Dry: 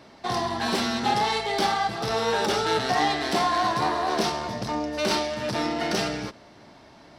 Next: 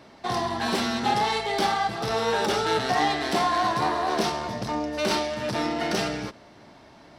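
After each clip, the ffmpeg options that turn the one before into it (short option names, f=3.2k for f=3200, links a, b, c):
-af "equalizer=f=4.9k:t=o:w=0.77:g=-2"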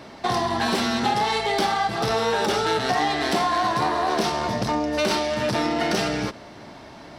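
-af "acompressor=threshold=-29dB:ratio=3,volume=8dB"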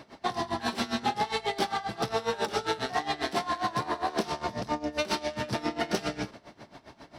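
-af "aeval=exprs='val(0)*pow(10,-18*(0.5-0.5*cos(2*PI*7.4*n/s))/20)':c=same,volume=-3dB"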